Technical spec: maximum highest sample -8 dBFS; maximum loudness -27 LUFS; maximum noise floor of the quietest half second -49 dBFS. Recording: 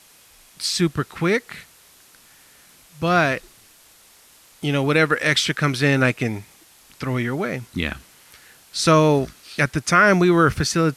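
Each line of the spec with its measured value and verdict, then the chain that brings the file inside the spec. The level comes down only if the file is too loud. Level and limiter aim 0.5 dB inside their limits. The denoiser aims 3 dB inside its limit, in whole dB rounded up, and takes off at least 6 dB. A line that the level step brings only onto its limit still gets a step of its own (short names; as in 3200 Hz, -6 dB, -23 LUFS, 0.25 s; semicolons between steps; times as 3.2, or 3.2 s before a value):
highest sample -4.5 dBFS: fail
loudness -20.0 LUFS: fail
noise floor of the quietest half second -52 dBFS: OK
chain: gain -7.5 dB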